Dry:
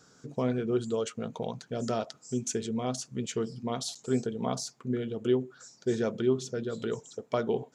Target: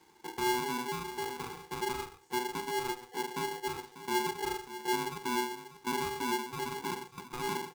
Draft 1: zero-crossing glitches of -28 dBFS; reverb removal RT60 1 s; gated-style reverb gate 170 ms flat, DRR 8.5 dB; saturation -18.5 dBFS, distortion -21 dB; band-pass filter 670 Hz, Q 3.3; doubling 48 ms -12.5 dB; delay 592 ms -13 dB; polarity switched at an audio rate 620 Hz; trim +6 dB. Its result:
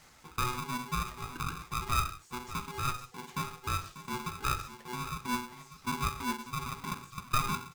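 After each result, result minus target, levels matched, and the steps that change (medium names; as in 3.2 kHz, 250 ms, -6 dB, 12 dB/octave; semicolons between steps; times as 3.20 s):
500 Hz band -11.0 dB; saturation: distortion -13 dB
change: band-pass filter 270 Hz, Q 3.3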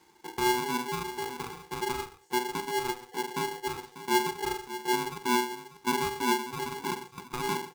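saturation: distortion -13 dB
change: saturation -30 dBFS, distortion -9 dB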